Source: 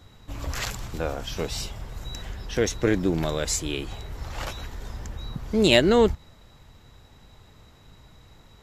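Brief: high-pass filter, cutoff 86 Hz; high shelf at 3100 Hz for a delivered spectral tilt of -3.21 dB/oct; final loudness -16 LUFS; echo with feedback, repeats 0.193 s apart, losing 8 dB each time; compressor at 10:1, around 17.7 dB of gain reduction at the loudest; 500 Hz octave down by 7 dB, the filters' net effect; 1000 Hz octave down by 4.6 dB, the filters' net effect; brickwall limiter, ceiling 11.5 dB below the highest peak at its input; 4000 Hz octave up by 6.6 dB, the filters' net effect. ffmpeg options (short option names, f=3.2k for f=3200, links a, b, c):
-af "highpass=86,equalizer=f=500:t=o:g=-8,equalizer=f=1k:t=o:g=-4,highshelf=f=3.1k:g=5,equalizer=f=4k:t=o:g=5,acompressor=threshold=-28dB:ratio=10,alimiter=level_in=1.5dB:limit=-24dB:level=0:latency=1,volume=-1.5dB,aecho=1:1:193|386|579|772|965:0.398|0.159|0.0637|0.0255|0.0102,volume=20dB"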